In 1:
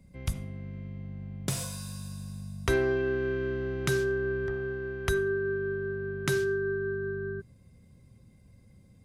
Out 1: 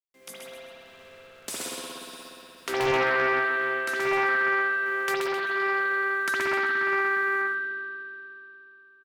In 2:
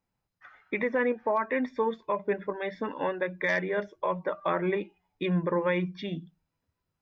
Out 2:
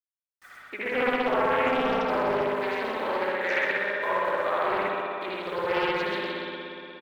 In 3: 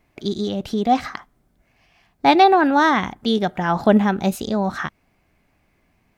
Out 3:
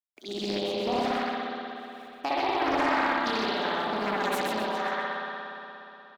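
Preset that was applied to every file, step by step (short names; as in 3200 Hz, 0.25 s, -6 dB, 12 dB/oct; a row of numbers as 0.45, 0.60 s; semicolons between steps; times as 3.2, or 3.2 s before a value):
steep high-pass 220 Hz 36 dB/oct; tilt +2 dB/oct; compressor 5:1, threshold -22 dBFS; bit-crush 9-bit; random-step tremolo; on a send: feedback echo 0.13 s, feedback 35%, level -5 dB; on the sum: spring tank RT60 3.2 s, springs 59 ms, chirp 30 ms, DRR -8 dB; Doppler distortion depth 0.43 ms; normalise peaks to -12 dBFS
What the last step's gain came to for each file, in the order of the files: -2.0, -1.5, -7.5 dB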